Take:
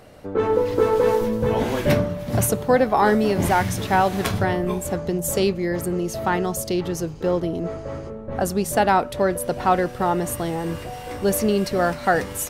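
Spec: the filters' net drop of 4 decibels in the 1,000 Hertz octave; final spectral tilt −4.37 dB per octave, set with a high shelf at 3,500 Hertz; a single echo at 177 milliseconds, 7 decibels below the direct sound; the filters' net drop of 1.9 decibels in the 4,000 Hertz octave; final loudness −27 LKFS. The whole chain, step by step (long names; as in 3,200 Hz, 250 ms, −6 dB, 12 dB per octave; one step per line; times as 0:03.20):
parametric band 1,000 Hz −6 dB
high-shelf EQ 3,500 Hz +8 dB
parametric band 4,000 Hz −8 dB
single-tap delay 177 ms −7 dB
level −5.5 dB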